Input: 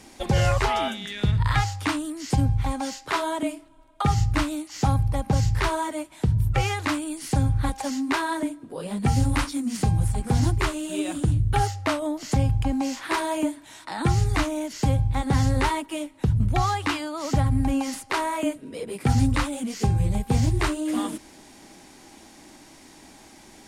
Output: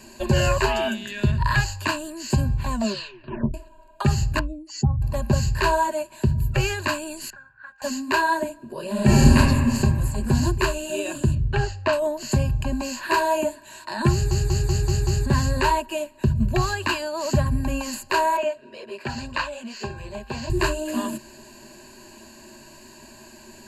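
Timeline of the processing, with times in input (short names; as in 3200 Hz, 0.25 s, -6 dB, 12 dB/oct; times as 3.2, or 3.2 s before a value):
2.69 tape stop 0.85 s
4.39–5.02 spectral contrast raised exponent 2.1
7.3–7.82 band-pass 1500 Hz, Q 10
8.91–9.36 reverb throw, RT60 2 s, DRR -8 dB
11.35–11.93 air absorption 110 m
14.12 stutter in place 0.19 s, 6 plays
18.37–20.5 three-band isolator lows -16 dB, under 430 Hz, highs -20 dB, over 5400 Hz
whole clip: ripple EQ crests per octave 1.4, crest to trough 16 dB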